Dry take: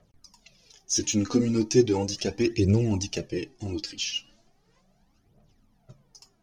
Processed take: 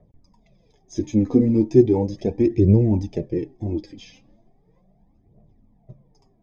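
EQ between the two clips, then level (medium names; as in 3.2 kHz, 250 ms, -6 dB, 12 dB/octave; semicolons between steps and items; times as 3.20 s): boxcar filter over 31 samples; +7.0 dB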